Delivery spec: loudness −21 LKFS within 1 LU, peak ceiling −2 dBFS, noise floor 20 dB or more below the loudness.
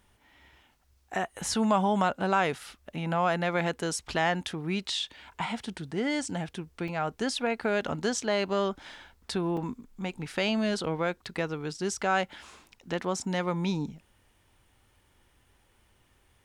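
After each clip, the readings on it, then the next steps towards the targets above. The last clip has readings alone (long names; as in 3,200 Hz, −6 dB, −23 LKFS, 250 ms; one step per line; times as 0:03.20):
number of dropouts 2; longest dropout 3.8 ms; integrated loudness −30.0 LKFS; sample peak −12.5 dBFS; target loudness −21.0 LKFS
→ repair the gap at 0:06.88/0:09.57, 3.8 ms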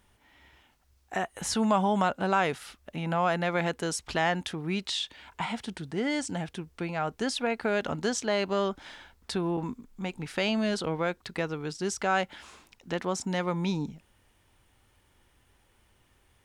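number of dropouts 0; integrated loudness −30.0 LKFS; sample peak −12.5 dBFS; target loudness −21.0 LKFS
→ level +9 dB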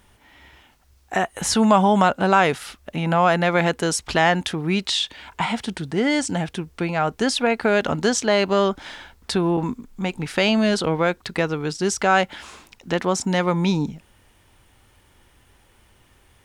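integrated loudness −21.0 LKFS; sample peak −3.5 dBFS; background noise floor −57 dBFS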